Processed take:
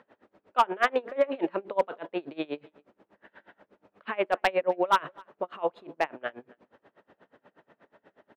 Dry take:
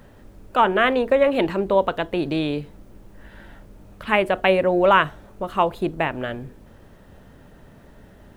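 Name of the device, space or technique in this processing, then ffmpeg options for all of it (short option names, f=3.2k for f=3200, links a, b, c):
helicopter radio: -filter_complex "[0:a]asettb=1/sr,asplit=3[a][b][c];[a]atrim=end=1.034[d];[b]atrim=start=1.03:end=1.52,asetpts=PTS-STARTPTS,afade=t=in:d=0.004:c=qsin,afade=t=out:st=0.486:d=0.004:c=qsin,lowshelf=f=460:g=2[e];[c]atrim=start=1.516[f];[d][e]acrossfade=d=0.004:c1=hsin:c2=qsin[g];[g][f]acrossfade=d=0.004:c1=qsin:c2=hsin,highpass=390,lowpass=2.6k,aeval=exprs='val(0)*pow(10,-28*(0.5-0.5*cos(2*PI*8.3*n/s))/20)':c=same,asoftclip=type=hard:threshold=-14dB,asplit=2[h][i];[i]adelay=256.6,volume=-26dB,highshelf=f=4k:g=-5.77[j];[h][j]amix=inputs=2:normalize=0"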